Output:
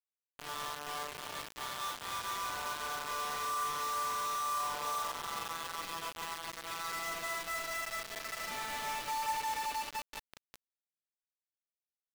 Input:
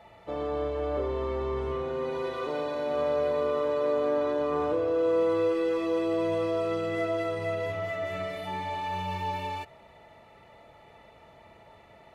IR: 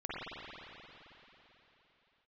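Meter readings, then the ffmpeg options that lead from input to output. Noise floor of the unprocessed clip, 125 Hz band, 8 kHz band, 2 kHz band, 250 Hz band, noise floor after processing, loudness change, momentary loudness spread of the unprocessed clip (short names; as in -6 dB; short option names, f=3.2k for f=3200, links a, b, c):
-55 dBFS, -18.5 dB, n/a, 0.0 dB, -22.5 dB, under -85 dBFS, -7.5 dB, 7 LU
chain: -filter_complex "[0:a]lowpass=2.2k[a];[1:a]atrim=start_sample=2205,asetrate=57330,aresample=44100[b];[a][b]afir=irnorm=-1:irlink=0,acompressor=mode=upward:threshold=-32dB:ratio=2.5,highpass=f=880:w=0.5412,highpass=f=880:w=1.3066,acrusher=bits=5:mix=0:aa=0.000001,volume=-3dB"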